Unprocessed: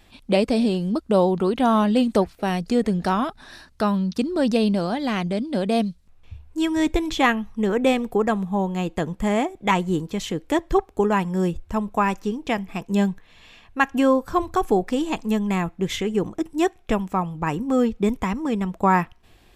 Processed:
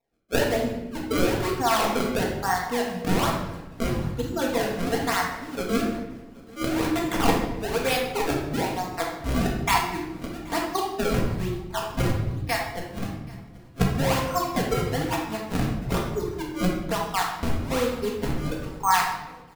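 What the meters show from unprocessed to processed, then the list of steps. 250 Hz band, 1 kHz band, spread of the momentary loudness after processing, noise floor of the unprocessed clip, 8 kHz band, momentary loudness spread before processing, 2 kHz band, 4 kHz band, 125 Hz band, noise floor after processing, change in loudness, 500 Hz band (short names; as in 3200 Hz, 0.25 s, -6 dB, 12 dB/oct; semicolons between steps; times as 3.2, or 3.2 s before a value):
-6.5 dB, -2.0 dB, 9 LU, -54 dBFS, +6.0 dB, 7 LU, -0.5 dB, +1.0 dB, 0.0 dB, -44 dBFS, -3.5 dB, -4.5 dB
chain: Wiener smoothing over 15 samples; spectral noise reduction 22 dB; HPF 600 Hz 12 dB/oct; high shelf 3500 Hz +11.5 dB; in parallel at -0.5 dB: negative-ratio compressor -29 dBFS; on the sum: decimation with a swept rate 28×, swing 160% 1.1 Hz; on a send: feedback echo 0.778 s, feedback 59%, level -24 dB; on the sum: shoebox room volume 490 m³, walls mixed, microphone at 1.7 m; gain -6 dB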